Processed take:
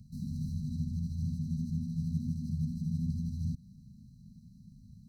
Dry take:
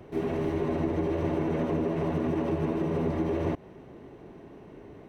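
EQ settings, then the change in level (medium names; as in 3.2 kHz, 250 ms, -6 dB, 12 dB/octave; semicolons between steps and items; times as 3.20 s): brick-wall FIR band-stop 240–3900 Hz; 0.0 dB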